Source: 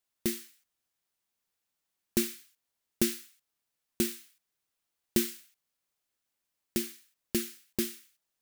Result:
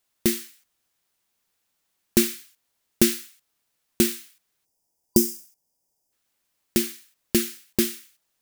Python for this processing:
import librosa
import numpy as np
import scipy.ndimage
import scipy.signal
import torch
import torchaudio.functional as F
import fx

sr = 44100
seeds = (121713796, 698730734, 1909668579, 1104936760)

y = fx.spec_box(x, sr, start_s=4.65, length_s=1.48, low_hz=1000.0, high_hz=4700.0, gain_db=-17)
y = y * 10.0 ** (9.0 / 20.0)